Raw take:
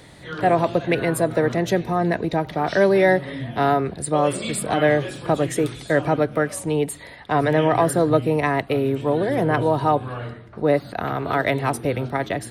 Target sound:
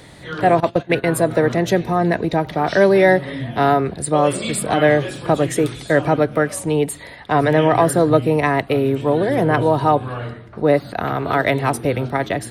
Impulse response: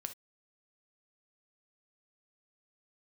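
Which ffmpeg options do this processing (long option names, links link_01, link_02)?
-filter_complex "[0:a]asettb=1/sr,asplit=3[link_01][link_02][link_03];[link_01]atrim=end=0.604[link_04];[link_02]atrim=start=0.6:end=1.04,asetpts=PTS-STARTPTS,afade=type=in:duration=0.004:curve=qsin,afade=type=out:start_time=0.436:duration=0.004:curve=qsin,agate=range=-18dB:threshold=-20dB:ratio=16:detection=peak[link_05];[link_03]atrim=start=1.036[link_06];[link_04][link_05]acrossfade=duration=0.004:curve1=hsin:curve2=qsin[link_07];[link_07][link_06]acrossfade=duration=0.004:curve1=qsin:curve2=hsin,volume=3.5dB"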